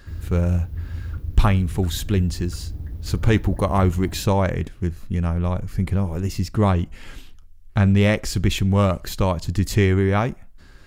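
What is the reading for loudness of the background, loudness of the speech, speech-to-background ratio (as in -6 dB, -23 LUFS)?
-33.0 LUFS, -22.0 LUFS, 11.0 dB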